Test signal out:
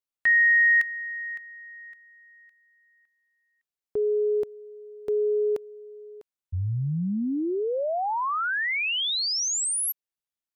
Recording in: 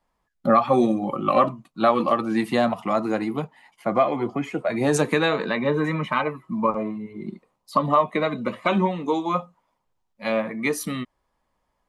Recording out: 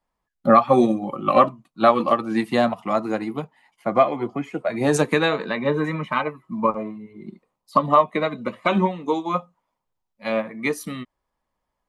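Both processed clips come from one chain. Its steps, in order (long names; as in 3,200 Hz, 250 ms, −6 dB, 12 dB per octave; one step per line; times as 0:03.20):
expander for the loud parts 1.5 to 1, over −33 dBFS
level +4 dB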